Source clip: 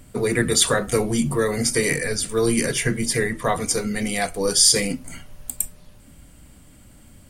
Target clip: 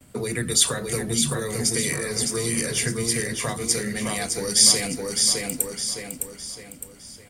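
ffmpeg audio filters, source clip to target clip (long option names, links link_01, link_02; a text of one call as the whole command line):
ffmpeg -i in.wav -filter_complex "[0:a]agate=range=-33dB:threshold=-45dB:ratio=3:detection=peak,highpass=frequency=110:poles=1,asplit=2[link_01][link_02];[link_02]aecho=0:1:610|1220|1830|2440|3050:0.562|0.231|0.0945|0.0388|0.0159[link_03];[link_01][link_03]amix=inputs=2:normalize=0,acrossover=split=170|3000[link_04][link_05][link_06];[link_05]acompressor=threshold=-28dB:ratio=6[link_07];[link_04][link_07][link_06]amix=inputs=3:normalize=0" out.wav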